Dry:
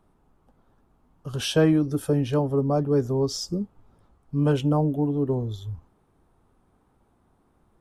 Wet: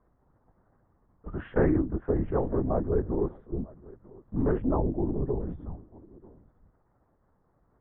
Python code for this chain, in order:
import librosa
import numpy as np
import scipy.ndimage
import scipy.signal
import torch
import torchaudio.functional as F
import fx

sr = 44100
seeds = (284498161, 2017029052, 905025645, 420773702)

y = x + 10.0 ** (-22.5 / 20.0) * np.pad(x, (int(941 * sr / 1000.0), 0))[:len(x)]
y = fx.lpc_vocoder(y, sr, seeds[0], excitation='whisper', order=8)
y = scipy.signal.sosfilt(scipy.signal.ellip(4, 1.0, 80, 1900.0, 'lowpass', fs=sr, output='sos'), y)
y = F.gain(torch.from_numpy(y), -3.5).numpy()